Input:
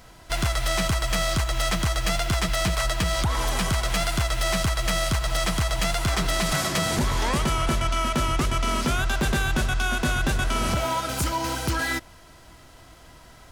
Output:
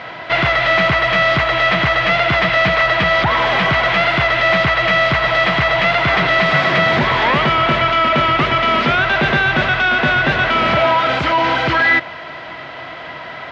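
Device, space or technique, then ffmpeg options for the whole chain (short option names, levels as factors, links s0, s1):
overdrive pedal into a guitar cabinet: -filter_complex "[0:a]asplit=2[s0][s1];[s1]highpass=f=720:p=1,volume=11.2,asoftclip=type=tanh:threshold=0.158[s2];[s0][s2]amix=inputs=2:normalize=0,lowpass=f=4700:p=1,volume=0.501,highpass=88,equalizer=f=140:t=q:w=4:g=6,equalizer=f=630:t=q:w=4:g=4,equalizer=f=2000:t=q:w=4:g=5,lowpass=f=3500:w=0.5412,lowpass=f=3500:w=1.3066,volume=2.24"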